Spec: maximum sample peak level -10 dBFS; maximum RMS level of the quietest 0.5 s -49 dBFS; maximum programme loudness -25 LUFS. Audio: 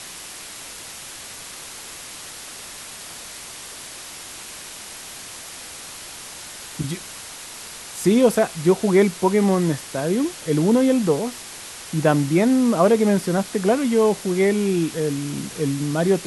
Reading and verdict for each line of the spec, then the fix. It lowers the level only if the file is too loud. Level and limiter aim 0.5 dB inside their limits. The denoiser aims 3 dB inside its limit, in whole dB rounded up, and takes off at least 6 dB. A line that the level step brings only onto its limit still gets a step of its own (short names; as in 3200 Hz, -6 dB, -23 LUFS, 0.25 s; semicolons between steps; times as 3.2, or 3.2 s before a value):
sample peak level -4.0 dBFS: fail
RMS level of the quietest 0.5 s -37 dBFS: fail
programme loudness -20.0 LUFS: fail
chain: denoiser 10 dB, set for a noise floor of -37 dBFS; gain -5.5 dB; limiter -10.5 dBFS